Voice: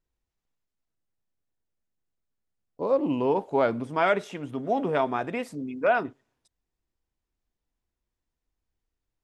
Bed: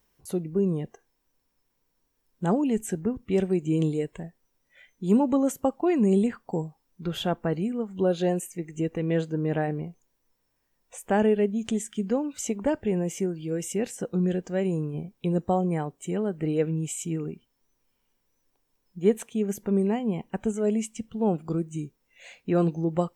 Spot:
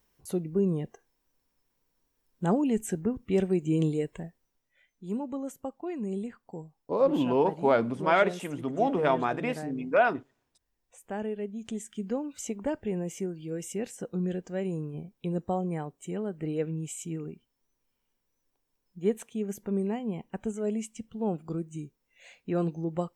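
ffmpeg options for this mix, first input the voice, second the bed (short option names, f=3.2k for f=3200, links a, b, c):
-filter_complex "[0:a]adelay=4100,volume=0dB[a];[1:a]volume=5dB,afade=t=out:st=4.24:d=0.45:silence=0.298538,afade=t=in:st=11.37:d=0.72:silence=0.473151[b];[a][b]amix=inputs=2:normalize=0"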